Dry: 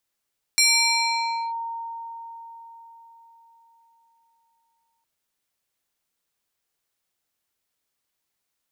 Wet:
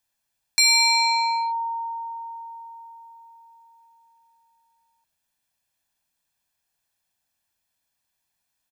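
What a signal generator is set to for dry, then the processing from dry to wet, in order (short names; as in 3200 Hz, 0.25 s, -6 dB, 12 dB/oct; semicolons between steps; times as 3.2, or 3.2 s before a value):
FM tone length 4.46 s, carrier 921 Hz, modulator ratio 3.53, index 2.5, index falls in 0.95 s linear, decay 4.59 s, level -14 dB
comb 1.2 ms, depth 57%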